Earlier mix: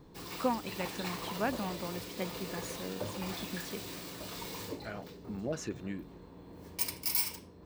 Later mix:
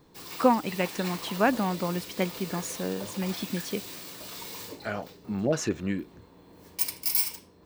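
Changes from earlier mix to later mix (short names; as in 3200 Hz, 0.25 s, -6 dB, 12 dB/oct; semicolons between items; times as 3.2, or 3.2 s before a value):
speech +10.0 dB; background: add tilt +1.5 dB/oct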